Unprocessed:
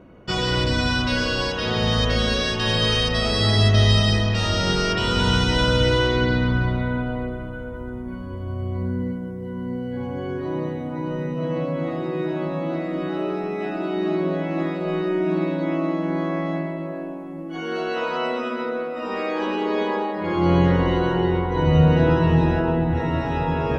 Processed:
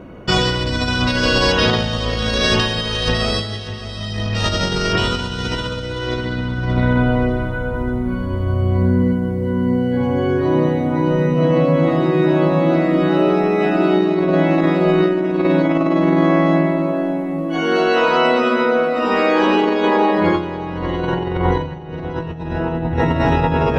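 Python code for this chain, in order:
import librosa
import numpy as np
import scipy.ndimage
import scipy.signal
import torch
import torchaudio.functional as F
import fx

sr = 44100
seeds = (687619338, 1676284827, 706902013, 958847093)

p1 = fx.over_compress(x, sr, threshold_db=-24.0, ratio=-0.5)
p2 = p1 + fx.echo_feedback(p1, sr, ms=591, feedback_pct=40, wet_db=-14.5, dry=0)
y = F.gain(torch.from_numpy(p2), 7.5).numpy()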